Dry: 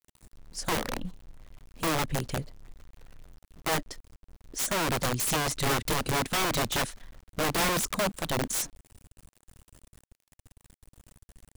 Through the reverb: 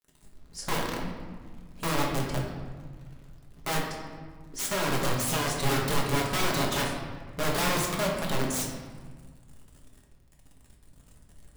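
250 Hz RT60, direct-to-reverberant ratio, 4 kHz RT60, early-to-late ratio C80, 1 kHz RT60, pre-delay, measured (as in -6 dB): 2.2 s, -2.0 dB, 1.0 s, 5.0 dB, 1.5 s, 5 ms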